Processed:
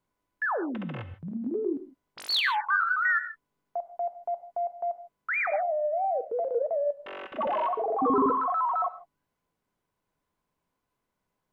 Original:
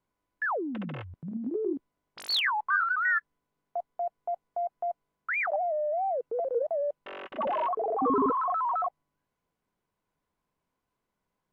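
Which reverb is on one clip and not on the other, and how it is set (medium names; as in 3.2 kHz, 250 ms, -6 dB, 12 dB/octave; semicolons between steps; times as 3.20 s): gated-style reverb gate 180 ms flat, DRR 11 dB; trim +1 dB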